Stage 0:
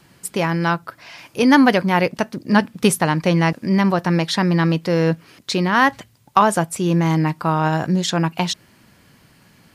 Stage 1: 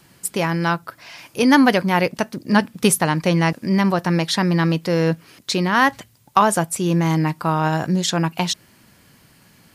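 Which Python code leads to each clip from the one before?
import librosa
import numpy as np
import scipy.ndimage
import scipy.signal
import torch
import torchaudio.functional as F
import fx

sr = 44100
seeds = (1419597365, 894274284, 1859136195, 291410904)

y = fx.high_shelf(x, sr, hz=6300.0, db=6.5)
y = F.gain(torch.from_numpy(y), -1.0).numpy()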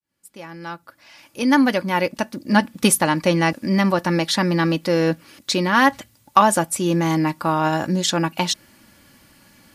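y = fx.fade_in_head(x, sr, length_s=2.9)
y = y + 0.47 * np.pad(y, (int(3.5 * sr / 1000.0), 0))[:len(y)]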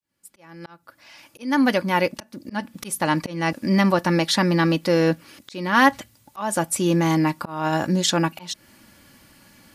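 y = fx.auto_swell(x, sr, attack_ms=313.0)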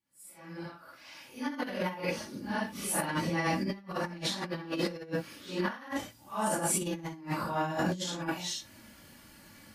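y = fx.phase_scramble(x, sr, seeds[0], window_ms=200)
y = fx.over_compress(y, sr, threshold_db=-25.0, ratio=-0.5)
y = F.gain(torch.from_numpy(y), -7.5).numpy()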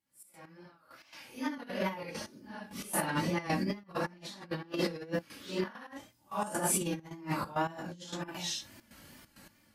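y = fx.step_gate(x, sr, bpm=133, pattern='xx.x....x.xxxx.x', floor_db=-12.0, edge_ms=4.5)
y = fx.wow_flutter(y, sr, seeds[1], rate_hz=2.1, depth_cents=68.0)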